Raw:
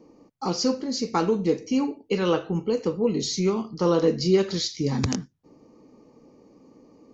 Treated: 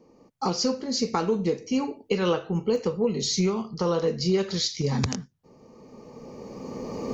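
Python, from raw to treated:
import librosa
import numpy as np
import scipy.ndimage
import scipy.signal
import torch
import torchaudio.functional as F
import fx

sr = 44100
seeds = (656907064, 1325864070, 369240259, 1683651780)

y = fx.recorder_agc(x, sr, target_db=-11.5, rise_db_per_s=14.0, max_gain_db=30)
y = fx.peak_eq(y, sr, hz=300.0, db=fx.steps((0.0, -8.5), (2.76, -15.0)), octaves=0.24)
y = y * 10.0 ** (-2.5 / 20.0)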